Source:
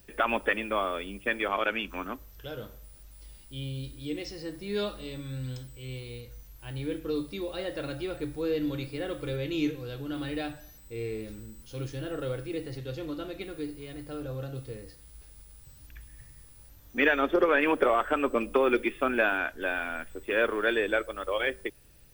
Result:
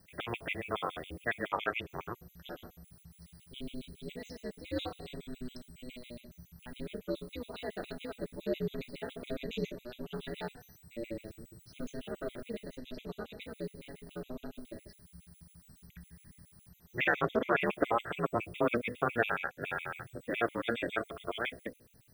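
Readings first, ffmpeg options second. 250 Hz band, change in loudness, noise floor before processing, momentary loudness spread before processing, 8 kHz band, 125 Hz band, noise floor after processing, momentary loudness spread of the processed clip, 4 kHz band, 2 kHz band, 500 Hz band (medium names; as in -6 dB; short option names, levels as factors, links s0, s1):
-7.0 dB, -6.5 dB, -53 dBFS, 17 LU, -6.5 dB, -6.5 dB, -63 dBFS, 22 LU, -6.0 dB, -6.5 dB, -7.5 dB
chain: -af "bandreject=f=61.57:t=h:w=4,bandreject=f=123.14:t=h:w=4,bandreject=f=184.71:t=h:w=4,bandreject=f=246.28:t=h:w=4,bandreject=f=307.85:t=h:w=4,bandreject=f=369.42:t=h:w=4,bandreject=f=430.99:t=h:w=4,bandreject=f=492.56:t=h:w=4,bandreject=f=554.13:t=h:w=4,bandreject=f=615.7:t=h:w=4,aeval=exprs='val(0)*sin(2*PI*120*n/s)':c=same,afftfilt=real='re*gt(sin(2*PI*7.2*pts/sr)*(1-2*mod(floor(b*sr/1024/2000),2)),0)':imag='im*gt(sin(2*PI*7.2*pts/sr)*(1-2*mod(floor(b*sr/1024/2000),2)),0)':win_size=1024:overlap=0.75"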